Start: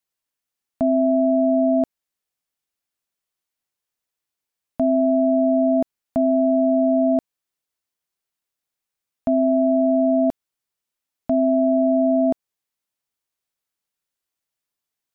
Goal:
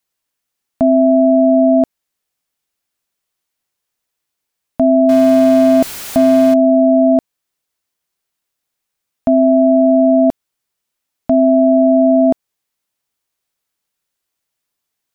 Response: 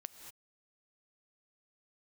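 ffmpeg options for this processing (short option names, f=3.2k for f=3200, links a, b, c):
-filter_complex "[0:a]asettb=1/sr,asplit=3[a][b][c];[a]atrim=end=5.094[d];[b]atrim=start=5.09:end=6.54,asetpts=PTS-STARTPTS,afade=t=in:d=0.004:c=qsin,afade=t=out:st=1.446:d=0.004:c=qsin,aeval=exprs='val(0)+0.5*0.0376*sgn(val(0))':c=same[e];[c]atrim=start=6.536[f];[d][e]acrossfade=d=0.004:c1=hsin:c2=qsin[g];[g][f]acrossfade=d=0.004:c1=qsin:c2=hsin,volume=7.5dB"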